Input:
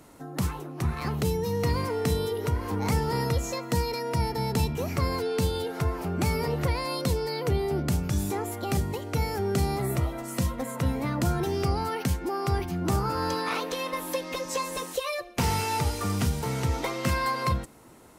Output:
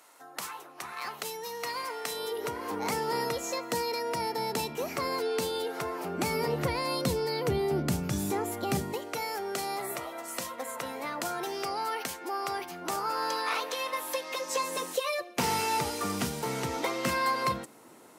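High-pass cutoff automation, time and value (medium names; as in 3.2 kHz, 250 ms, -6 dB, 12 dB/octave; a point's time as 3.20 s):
2.08 s 830 Hz
2.51 s 350 Hz
5.95 s 350 Hz
6.78 s 140 Hz
8.73 s 140 Hz
9.21 s 560 Hz
14.33 s 560 Hz
14.78 s 230 Hz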